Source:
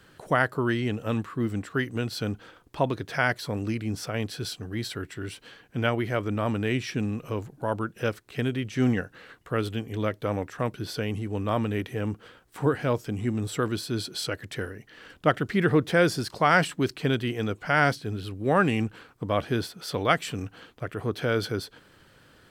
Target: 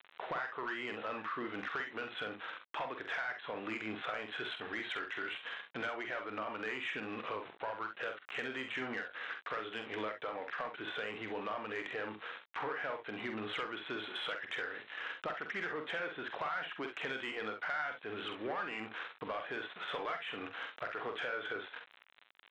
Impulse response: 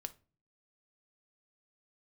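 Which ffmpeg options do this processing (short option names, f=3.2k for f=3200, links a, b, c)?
-filter_complex "[0:a]asplit=2[a][b];[b]highpass=f=720:p=1,volume=22dB,asoftclip=type=tanh:threshold=-6dB[c];[a][c]amix=inputs=2:normalize=0,lowpass=f=1.3k:p=1,volume=-6dB,aresample=8000,aeval=exprs='val(0)*gte(abs(val(0)),0.0126)':c=same,aresample=44100,bandpass=f=1.9k:t=q:w=0.69:csg=0,acompressor=threshold=-32dB:ratio=12,asoftclip=type=tanh:threshold=-26dB,aecho=1:1:46|65:0.447|0.282,volume=-3dB"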